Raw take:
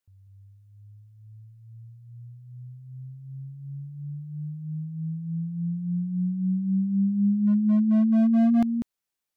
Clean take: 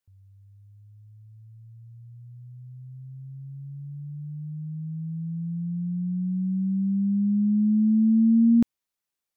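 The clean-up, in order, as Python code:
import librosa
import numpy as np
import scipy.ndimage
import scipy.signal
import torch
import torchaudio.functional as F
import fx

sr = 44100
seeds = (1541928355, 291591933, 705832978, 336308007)

y = fx.fix_declip(x, sr, threshold_db=-17.0)
y = fx.fix_echo_inverse(y, sr, delay_ms=194, level_db=-9.0)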